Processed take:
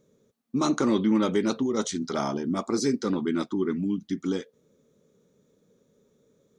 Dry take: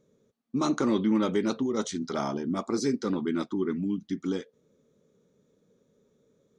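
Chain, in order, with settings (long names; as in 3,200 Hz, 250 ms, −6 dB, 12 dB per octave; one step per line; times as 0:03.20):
high-shelf EQ 7,100 Hz +5.5 dB
level +2 dB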